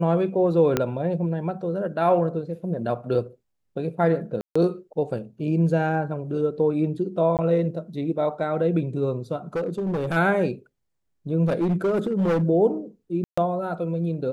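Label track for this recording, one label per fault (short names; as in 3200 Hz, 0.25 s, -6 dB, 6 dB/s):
0.770000	0.770000	pop -7 dBFS
4.410000	4.550000	gap 0.145 s
7.370000	7.390000	gap 18 ms
9.560000	10.170000	clipped -22 dBFS
11.450000	12.440000	clipped -18.5 dBFS
13.240000	13.380000	gap 0.135 s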